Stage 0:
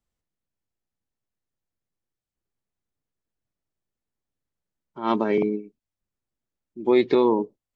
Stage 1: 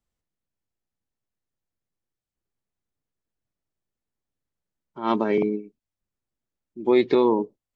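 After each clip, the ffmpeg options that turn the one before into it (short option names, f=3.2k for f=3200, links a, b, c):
-af anull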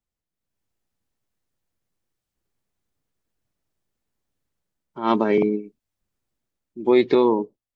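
-af "dynaudnorm=f=100:g=9:m=12dB,volume=-5dB"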